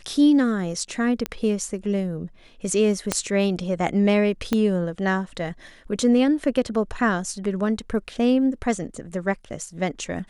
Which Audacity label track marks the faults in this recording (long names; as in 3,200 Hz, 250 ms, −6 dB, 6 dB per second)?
1.260000	1.260000	click −10 dBFS
3.120000	3.120000	click −6 dBFS
4.530000	4.530000	click −9 dBFS